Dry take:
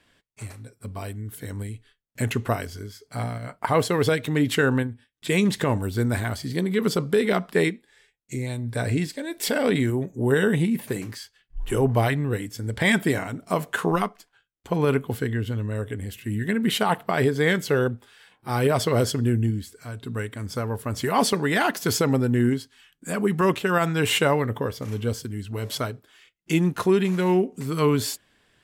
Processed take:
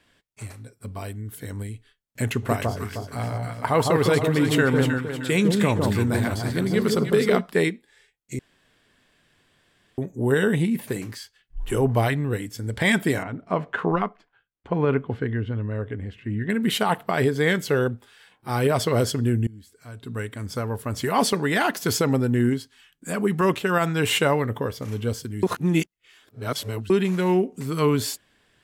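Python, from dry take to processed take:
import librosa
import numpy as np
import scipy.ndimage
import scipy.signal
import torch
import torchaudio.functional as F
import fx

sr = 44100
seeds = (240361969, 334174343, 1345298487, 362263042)

y = fx.echo_alternate(x, sr, ms=155, hz=1100.0, feedback_pct=62, wet_db=-2.0, at=(2.42, 7.4), fade=0.02)
y = fx.lowpass(y, sr, hz=2300.0, slope=12, at=(13.23, 16.5))
y = fx.edit(y, sr, fx.room_tone_fill(start_s=8.39, length_s=1.59),
    fx.fade_in_from(start_s=19.47, length_s=0.8, floor_db=-23.0),
    fx.reverse_span(start_s=25.43, length_s=1.47), tone=tone)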